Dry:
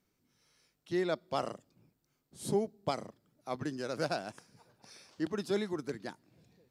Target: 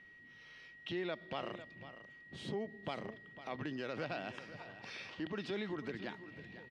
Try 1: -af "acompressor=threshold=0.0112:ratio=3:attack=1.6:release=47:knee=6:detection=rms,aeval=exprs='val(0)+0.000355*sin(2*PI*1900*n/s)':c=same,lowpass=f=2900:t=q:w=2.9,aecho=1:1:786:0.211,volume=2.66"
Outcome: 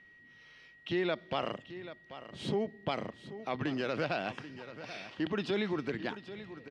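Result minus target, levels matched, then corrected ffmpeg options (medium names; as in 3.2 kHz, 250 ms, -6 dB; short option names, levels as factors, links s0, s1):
echo 286 ms late; compression: peak gain reduction -7.5 dB
-af "acompressor=threshold=0.00299:ratio=3:attack=1.6:release=47:knee=6:detection=rms,aeval=exprs='val(0)+0.000355*sin(2*PI*1900*n/s)':c=same,lowpass=f=2900:t=q:w=2.9,aecho=1:1:500:0.211,volume=2.66"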